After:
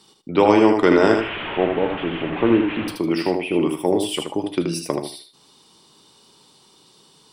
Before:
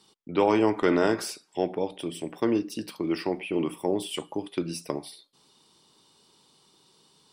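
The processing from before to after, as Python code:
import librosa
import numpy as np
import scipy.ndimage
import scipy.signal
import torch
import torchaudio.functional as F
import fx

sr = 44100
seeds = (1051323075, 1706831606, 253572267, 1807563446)

y = fx.delta_mod(x, sr, bps=16000, step_db=-29.5, at=(1.13, 2.88))
y = fx.echo_feedback(y, sr, ms=78, feedback_pct=18, wet_db=-5.5)
y = y * 10.0 ** (7.0 / 20.0)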